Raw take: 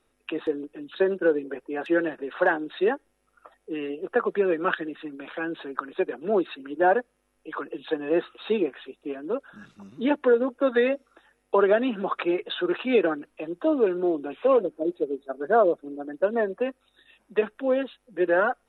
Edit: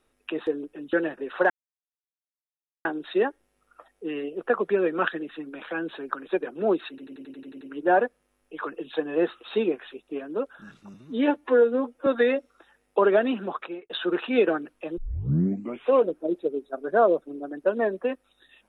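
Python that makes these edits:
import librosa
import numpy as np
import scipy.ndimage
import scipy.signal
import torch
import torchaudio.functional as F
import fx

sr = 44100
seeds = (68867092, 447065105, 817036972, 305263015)

y = fx.edit(x, sr, fx.cut(start_s=0.93, length_s=1.01),
    fx.insert_silence(at_s=2.51, length_s=1.35),
    fx.stutter(start_s=6.55, slice_s=0.09, count=9),
    fx.stretch_span(start_s=9.88, length_s=0.75, factor=1.5),
    fx.fade_out_span(start_s=11.87, length_s=0.59),
    fx.tape_start(start_s=13.54, length_s=0.87), tone=tone)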